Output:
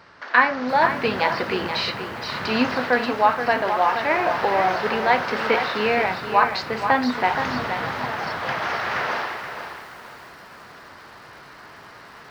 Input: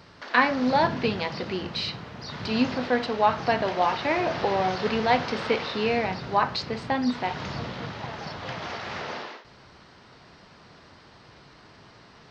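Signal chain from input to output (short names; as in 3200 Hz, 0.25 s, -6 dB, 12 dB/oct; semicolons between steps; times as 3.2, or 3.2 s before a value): EQ curve 150 Hz 0 dB, 1600 Hz +13 dB, 3500 Hz +4 dB; vocal rider within 3 dB 0.5 s; lo-fi delay 0.475 s, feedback 35%, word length 7-bit, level -8 dB; gain -3.5 dB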